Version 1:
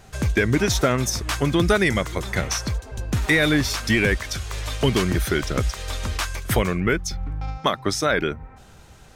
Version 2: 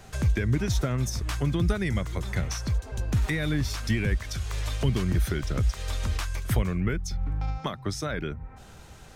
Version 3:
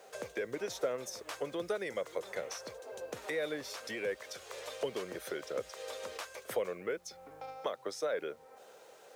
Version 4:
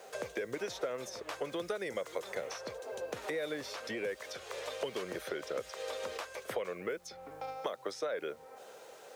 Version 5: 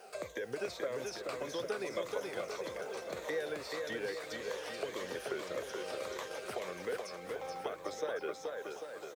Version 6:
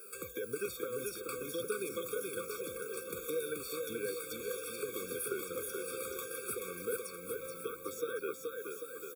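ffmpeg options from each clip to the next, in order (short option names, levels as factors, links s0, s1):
-filter_complex "[0:a]acrossover=split=180[s0][s1];[s1]acompressor=threshold=0.01:ratio=2[s2];[s0][s2]amix=inputs=2:normalize=0"
-af "acrusher=bits=9:mix=0:aa=0.000001,highpass=f=500:t=q:w=4.9,volume=0.376"
-filter_complex "[0:a]acrossover=split=940|4700[s0][s1][s2];[s0]acompressor=threshold=0.0112:ratio=4[s3];[s1]acompressor=threshold=0.00501:ratio=4[s4];[s2]acompressor=threshold=0.00126:ratio=4[s5];[s3][s4][s5]amix=inputs=3:normalize=0,volume=1.58"
-filter_complex "[0:a]afftfilt=real='re*pow(10,9/40*sin(2*PI*(1.1*log(max(b,1)*sr/1024/100)/log(2)-(-1.7)*(pts-256)/sr)))':imag='im*pow(10,9/40*sin(2*PI*(1.1*log(max(b,1)*sr/1024/100)/log(2)-(-1.7)*(pts-256)/sr)))':win_size=1024:overlap=0.75,asplit=2[s0][s1];[s1]aecho=0:1:430|795.5|1106|1370|1595:0.631|0.398|0.251|0.158|0.1[s2];[s0][s2]amix=inputs=2:normalize=0,volume=0.668"
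-af "aexciter=amount=6.1:drive=8.3:freq=8300,afftfilt=real='re*eq(mod(floor(b*sr/1024/540),2),0)':imag='im*eq(mod(floor(b*sr/1024/540),2),0)':win_size=1024:overlap=0.75,volume=1.12"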